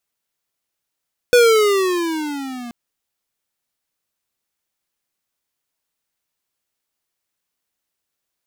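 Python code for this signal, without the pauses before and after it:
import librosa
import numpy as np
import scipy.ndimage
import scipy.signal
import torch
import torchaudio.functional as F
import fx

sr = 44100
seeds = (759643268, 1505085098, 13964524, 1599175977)

y = fx.riser_tone(sr, length_s=1.38, level_db=-9.5, wave='square', hz=495.0, rise_st=-13.0, swell_db=-22.0)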